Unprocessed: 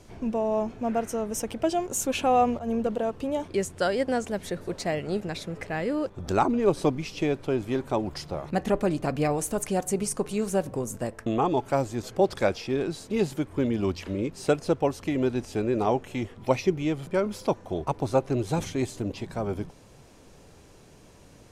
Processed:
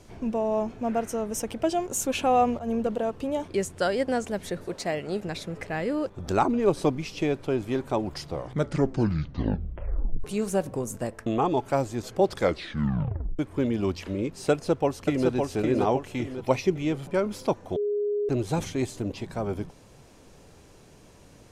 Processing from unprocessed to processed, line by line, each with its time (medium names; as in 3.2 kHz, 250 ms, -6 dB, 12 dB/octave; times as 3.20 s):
4.65–5.22 s: bass shelf 130 Hz -8.5 dB
8.20 s: tape stop 2.04 s
12.38 s: tape stop 1.01 s
14.51–15.28 s: echo throw 560 ms, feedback 40%, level -3.5 dB
17.76–18.29 s: bleep 413 Hz -23.5 dBFS